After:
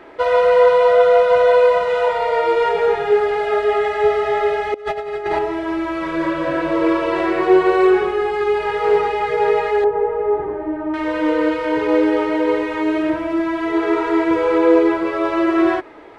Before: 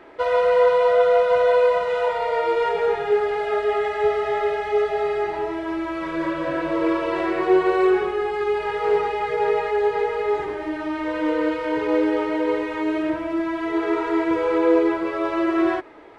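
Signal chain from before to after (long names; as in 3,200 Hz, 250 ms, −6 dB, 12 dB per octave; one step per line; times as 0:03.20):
0:04.74–0:05.39: compressor whose output falls as the input rises −27 dBFS, ratio −0.5
0:09.84–0:10.94: low-pass filter 1,000 Hz 12 dB per octave
level +4.5 dB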